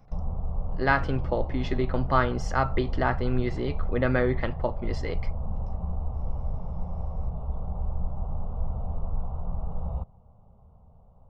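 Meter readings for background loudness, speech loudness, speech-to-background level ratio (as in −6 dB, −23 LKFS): −35.0 LKFS, −28.0 LKFS, 7.0 dB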